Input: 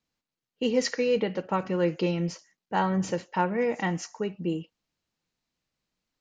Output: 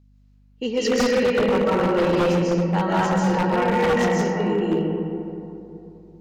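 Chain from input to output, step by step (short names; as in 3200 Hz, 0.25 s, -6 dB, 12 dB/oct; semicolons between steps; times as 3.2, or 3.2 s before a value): digital reverb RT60 3.1 s, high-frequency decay 0.35×, pre-delay 0.105 s, DRR -7.5 dB; wavefolder -13.5 dBFS; hum 50 Hz, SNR 33 dB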